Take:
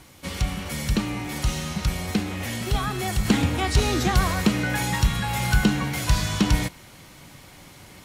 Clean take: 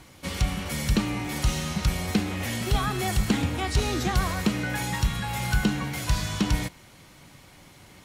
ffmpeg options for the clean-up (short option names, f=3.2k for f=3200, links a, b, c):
-af "agate=range=-21dB:threshold=-39dB,asetnsamples=n=441:p=0,asendcmd='3.25 volume volume -4dB',volume=0dB"